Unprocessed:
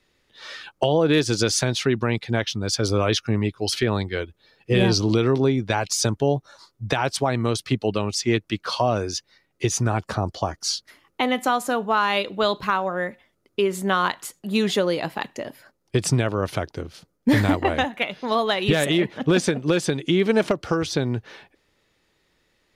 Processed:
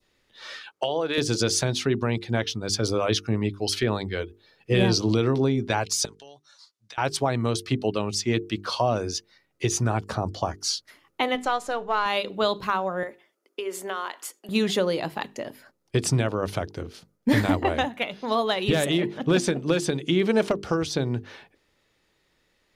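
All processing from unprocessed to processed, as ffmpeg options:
-filter_complex "[0:a]asettb=1/sr,asplit=3[s0][s1][s2];[s0]atrim=end=0.594[s3];[s1]atrim=start=0.59:end=1.18,asetpts=PTS-STARTPTS,afade=t=in:d=0.004:c=qsin,afade=t=out:st=0.586:d=0.004:c=qsin,highpass=f=750:p=1,highshelf=f=9000:g=-7[s4];[s2]atrim=start=1.176[s5];[s3][s4]acrossfade=d=0.004:c1=hsin:c2=qsin[s6];[s6][s5]acrossfade=d=0.004:c1=qsin:c2=hsin,asettb=1/sr,asplit=3[s7][s8][s9];[s7]atrim=end=6.054[s10];[s8]atrim=start=6.05:end=6.98,asetpts=PTS-STARTPTS,afade=t=in:d=0.004:c=qsin,afade=t=out:st=0.926:d=0.004:c=qsin,bandpass=f=5100:t=q:w=0.82,acompressor=threshold=0.01:ratio=5:attack=3.2:release=140:knee=1:detection=peak[s11];[s9]atrim=start=6.976[s12];[s10][s11]acrossfade=d=0.004:c1=hsin:c2=qsin[s13];[s13][s12]acrossfade=d=0.004:c1=qsin:c2=hsin,asettb=1/sr,asplit=3[s14][s15][s16];[s14]atrim=end=11.354[s17];[s15]atrim=start=11.35:end=12.06,asetpts=PTS-STARTPTS,afade=t=in:d=0.004:c=qsin,afade=t=out:st=0.706:d=0.004:c=qsin,aeval=exprs='if(lt(val(0),0),0.708*val(0),val(0))':c=same,lowpass=7000,equalizer=f=230:t=o:w=0.62:g=-11.5[s18];[s16]atrim=start=12.056[s19];[s17][s18]acrossfade=d=0.004:c1=hsin:c2=qsin[s20];[s20][s19]acrossfade=d=0.004:c1=qsin:c2=hsin,asettb=1/sr,asplit=3[s21][s22][s23];[s21]atrim=end=13.034[s24];[s22]atrim=start=13.03:end=14.49,asetpts=PTS-STARTPTS,afade=t=in:d=0.004:c=qsin,afade=t=out:st=1.456:d=0.004:c=qsin,highpass=f=310:w=0.5412,highpass=f=310:w=1.3066,bandreject=f=3900:w=12,acompressor=threshold=0.0562:ratio=4:attack=3.2:release=140:knee=1:detection=peak[s25];[s23]atrim=start=14.486[s26];[s24][s25]acrossfade=d=0.004:c1=hsin:c2=qsin[s27];[s27][s26]acrossfade=d=0.004:c1=qsin:c2=hsin,bandreject=f=50:t=h:w=6,bandreject=f=100:t=h:w=6,bandreject=f=150:t=h:w=6,bandreject=f=200:t=h:w=6,bandreject=f=250:t=h:w=6,bandreject=f=300:t=h:w=6,bandreject=f=350:t=h:w=6,bandreject=f=400:t=h:w=6,bandreject=f=450:t=h:w=6,adynamicequalizer=threshold=0.0126:dfrequency=1900:dqfactor=1.1:tfrequency=1900:tqfactor=1.1:attack=5:release=100:ratio=0.375:range=2:mode=cutabove:tftype=bell,volume=0.841"

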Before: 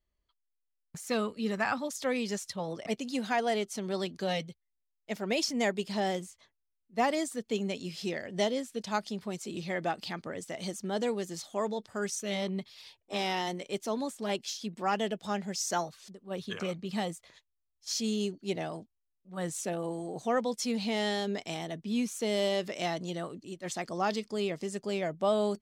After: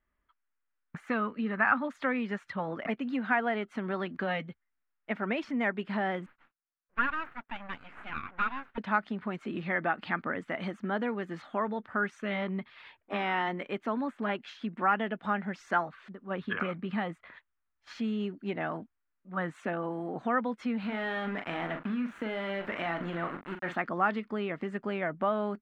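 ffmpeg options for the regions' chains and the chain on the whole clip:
-filter_complex "[0:a]asettb=1/sr,asplit=3[s0][s1][s2];[s0]atrim=end=6.264[s3];[s1]atrim=start=6.26:end=8.78,asetpts=PTS-STARTPTS,afade=t=in:d=0.004:c=qsin,afade=t=out:st=2.516:d=0.004:c=qsin,highpass=890,aemphasis=mode=reproduction:type=riaa,aeval=exprs='abs(val(0))':c=same[s4];[s2]atrim=start=8.776[s5];[s3][s4]acrossfade=d=0.004:c1=hsin:c2=qsin[s6];[s6][s5]acrossfade=d=0.004:c1=qsin:c2=hsin,asettb=1/sr,asplit=3[s7][s8][s9];[s7]atrim=end=20.794[s10];[s8]atrim=start=20.79:end=23.76,asetpts=PTS-STARTPTS,afade=t=in:d=0.004:c=qsin,afade=t=out:st=2.966:d=0.004:c=qsin,acompressor=threshold=0.0251:ratio=6:attack=3.2:release=140:knee=1:detection=peak,aeval=exprs='val(0)*gte(abs(val(0)),0.00841)':c=same,asplit=2[s11][s12];[s12]adelay=41,volume=0.398[s13];[s11][s13]amix=inputs=2:normalize=0,atrim=end_sample=130977[s14];[s9]atrim=start=23.756[s15];[s10][s14]acrossfade=d=0.004:c1=hsin:c2=qsin[s16];[s16][s15]acrossfade=d=0.004:c1=qsin:c2=hsin,equalizer=f=250:t=o:w=0.78:g=8.5,acompressor=threshold=0.0251:ratio=2.5,firequalizer=gain_entry='entry(430,0);entry(1400,15);entry(5300,-23);entry(11000,-27)':delay=0.05:min_phase=1"

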